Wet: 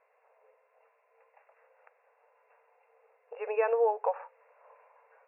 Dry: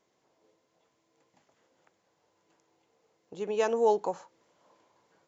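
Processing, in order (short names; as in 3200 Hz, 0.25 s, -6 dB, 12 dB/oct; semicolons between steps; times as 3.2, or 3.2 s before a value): compressor 6:1, threshold -29 dBFS, peak gain reduction 9.5 dB; brick-wall FIR band-pass 430–2800 Hz; gain +7 dB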